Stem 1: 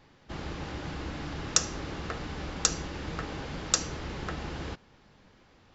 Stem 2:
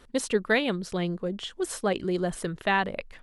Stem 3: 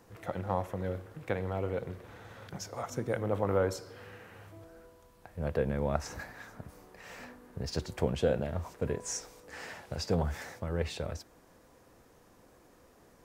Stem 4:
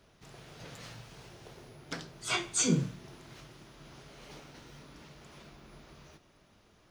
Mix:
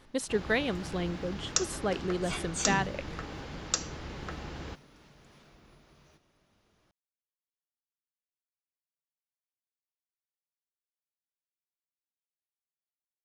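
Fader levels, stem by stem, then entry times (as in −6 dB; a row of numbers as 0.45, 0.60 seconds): −4.0 dB, −4.5 dB, muted, −6.5 dB; 0.00 s, 0.00 s, muted, 0.00 s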